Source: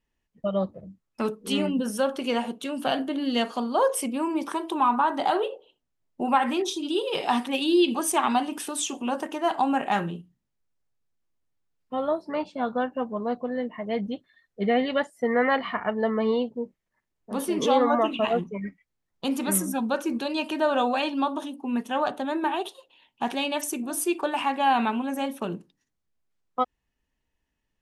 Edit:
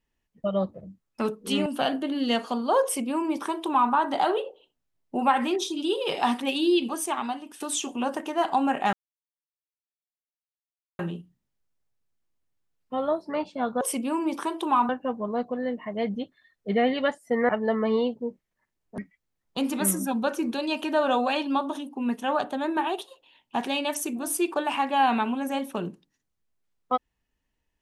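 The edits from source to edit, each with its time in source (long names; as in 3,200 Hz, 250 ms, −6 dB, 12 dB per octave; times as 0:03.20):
0:01.66–0:02.72: remove
0:03.90–0:04.98: duplicate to 0:12.81
0:07.51–0:08.66: fade out, to −13.5 dB
0:09.99: splice in silence 2.06 s
0:15.41–0:15.84: remove
0:17.33–0:18.65: remove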